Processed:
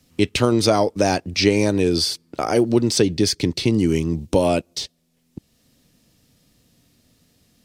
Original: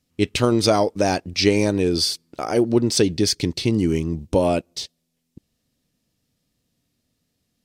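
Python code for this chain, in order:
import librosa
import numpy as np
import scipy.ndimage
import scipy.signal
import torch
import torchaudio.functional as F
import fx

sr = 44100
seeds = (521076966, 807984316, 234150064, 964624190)

y = fx.band_squash(x, sr, depth_pct=40)
y = y * 10.0 ** (1.0 / 20.0)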